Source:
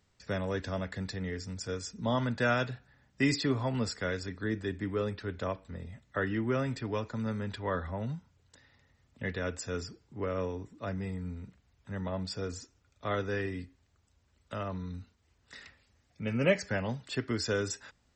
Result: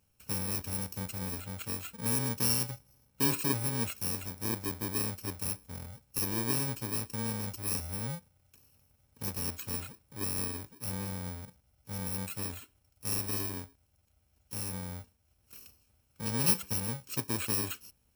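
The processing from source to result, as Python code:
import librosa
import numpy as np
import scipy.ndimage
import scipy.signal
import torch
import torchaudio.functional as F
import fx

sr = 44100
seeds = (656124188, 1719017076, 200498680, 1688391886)

y = fx.bit_reversed(x, sr, seeds[0], block=64)
y = y * librosa.db_to_amplitude(-1.0)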